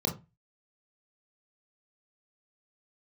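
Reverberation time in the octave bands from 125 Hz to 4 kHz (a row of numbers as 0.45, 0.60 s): 0.40, 0.35, 0.25, 0.25, 0.20, 0.20 s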